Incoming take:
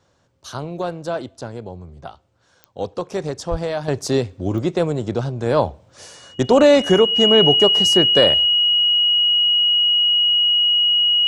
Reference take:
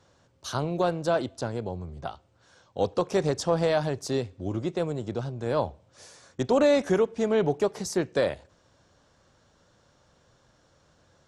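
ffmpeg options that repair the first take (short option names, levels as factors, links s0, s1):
-filter_complex "[0:a]adeclick=t=4,bandreject=f=2900:w=30,asplit=3[s0][s1][s2];[s0]afade=t=out:st=3.5:d=0.02[s3];[s1]highpass=f=140:w=0.5412,highpass=f=140:w=1.3066,afade=t=in:st=3.5:d=0.02,afade=t=out:st=3.62:d=0.02[s4];[s2]afade=t=in:st=3.62:d=0.02[s5];[s3][s4][s5]amix=inputs=3:normalize=0,asetnsamples=n=441:p=0,asendcmd='3.88 volume volume -9dB',volume=1"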